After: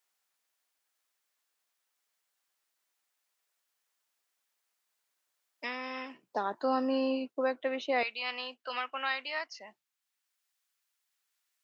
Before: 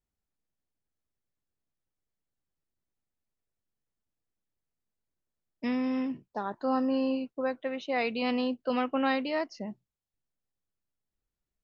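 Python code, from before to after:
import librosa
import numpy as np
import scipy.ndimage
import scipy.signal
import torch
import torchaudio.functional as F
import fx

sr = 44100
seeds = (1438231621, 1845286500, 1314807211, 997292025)

y = fx.highpass(x, sr, hz=fx.steps((0.0, 960.0), (6.23, 300.0), (8.03, 1400.0)), slope=12)
y = fx.band_squash(y, sr, depth_pct=40)
y = y * 10.0 ** (1.5 / 20.0)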